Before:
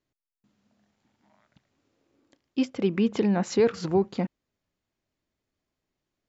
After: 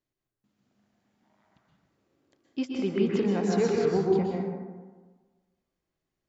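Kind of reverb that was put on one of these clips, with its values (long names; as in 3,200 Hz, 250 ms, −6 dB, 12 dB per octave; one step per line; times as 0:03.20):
dense smooth reverb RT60 1.4 s, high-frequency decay 0.4×, pre-delay 110 ms, DRR −2 dB
level −5.5 dB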